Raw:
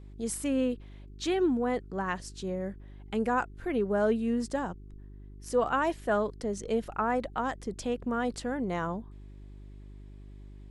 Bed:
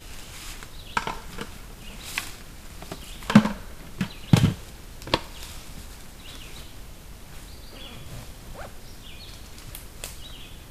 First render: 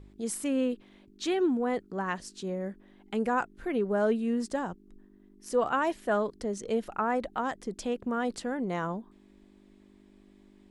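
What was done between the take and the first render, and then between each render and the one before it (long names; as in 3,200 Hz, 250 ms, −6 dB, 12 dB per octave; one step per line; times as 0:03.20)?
hum removal 50 Hz, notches 3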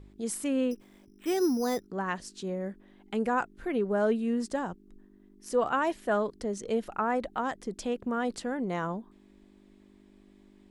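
0:00.71–0:01.87: bad sample-rate conversion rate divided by 8×, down filtered, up hold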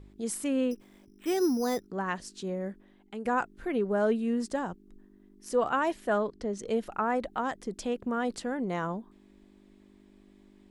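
0:02.71–0:03.25: fade out, to −11 dB
0:06.18–0:06.59: high-frequency loss of the air 72 metres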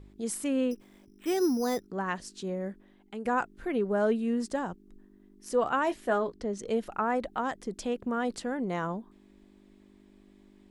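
0:05.84–0:06.34: double-tracking delay 17 ms −9.5 dB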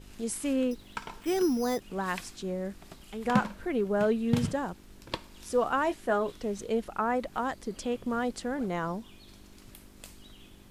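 mix in bed −12 dB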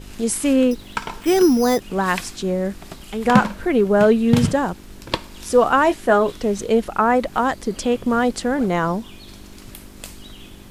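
level +12 dB
brickwall limiter −2 dBFS, peak gain reduction 2 dB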